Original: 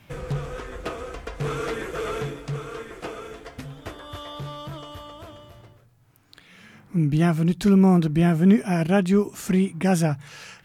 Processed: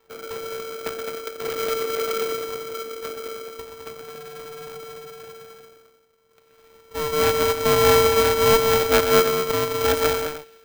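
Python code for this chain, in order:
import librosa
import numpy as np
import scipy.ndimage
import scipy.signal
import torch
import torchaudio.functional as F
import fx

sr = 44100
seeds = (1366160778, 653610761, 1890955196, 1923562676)

y = fx.wiener(x, sr, points=41)
y = scipy.signal.sosfilt(scipy.signal.butter(4, 250.0, 'highpass', fs=sr, output='sos'), y)
y = np.abs(y)
y = fx.echo_multitap(y, sr, ms=(126, 213, 308), db=(-8.5, -6.0, -13.5))
y = y * np.sign(np.sin(2.0 * np.pi * 450.0 * np.arange(len(y)) / sr))
y = y * 10.0 ** (3.0 / 20.0)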